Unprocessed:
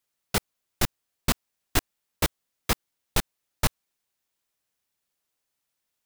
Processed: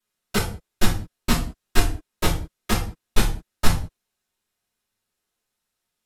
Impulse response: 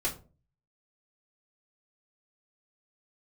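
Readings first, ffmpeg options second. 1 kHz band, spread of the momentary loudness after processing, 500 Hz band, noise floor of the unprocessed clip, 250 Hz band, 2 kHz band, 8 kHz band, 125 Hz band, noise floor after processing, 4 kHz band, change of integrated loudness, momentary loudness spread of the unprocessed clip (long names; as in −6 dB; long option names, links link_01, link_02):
+4.0 dB, 5 LU, +4.5 dB, −82 dBFS, +7.0 dB, +3.5 dB, +1.0 dB, +6.5 dB, −81 dBFS, +2.5 dB, +3.5 dB, 2 LU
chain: -filter_complex "[1:a]atrim=start_sample=2205,afade=type=out:start_time=0.18:duration=0.01,atrim=end_sample=8379,asetrate=27342,aresample=44100[link_01];[0:a][link_01]afir=irnorm=-1:irlink=0,volume=-5.5dB"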